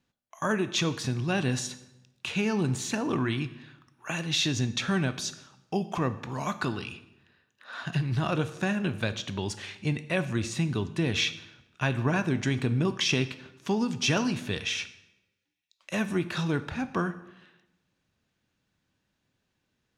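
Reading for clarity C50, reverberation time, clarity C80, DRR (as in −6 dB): 14.5 dB, 0.90 s, 16.5 dB, 11.5 dB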